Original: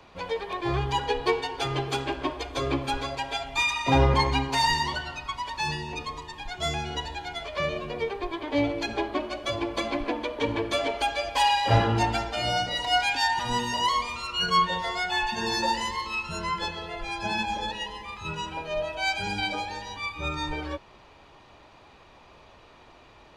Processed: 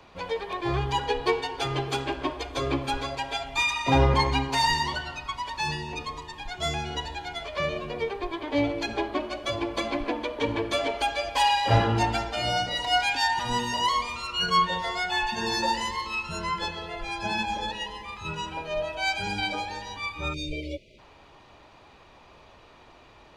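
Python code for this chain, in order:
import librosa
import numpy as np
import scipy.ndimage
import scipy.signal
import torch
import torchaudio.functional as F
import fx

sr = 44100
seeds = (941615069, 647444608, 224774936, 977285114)

y = fx.spec_erase(x, sr, start_s=20.34, length_s=0.65, low_hz=660.0, high_hz=2000.0)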